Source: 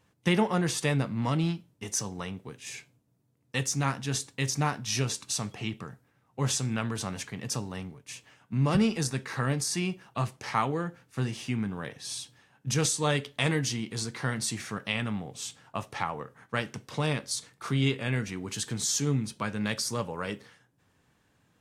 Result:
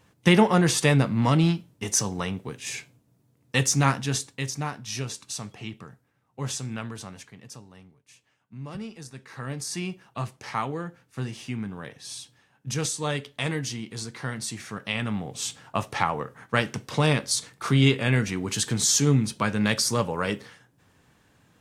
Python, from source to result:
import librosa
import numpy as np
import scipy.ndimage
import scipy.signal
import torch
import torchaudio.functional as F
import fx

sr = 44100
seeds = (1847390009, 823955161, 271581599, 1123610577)

y = fx.gain(x, sr, db=fx.line((3.9, 7.0), (4.58, -3.0), (6.81, -3.0), (7.63, -12.5), (9.05, -12.5), (9.74, -1.5), (14.62, -1.5), (15.48, 7.0)))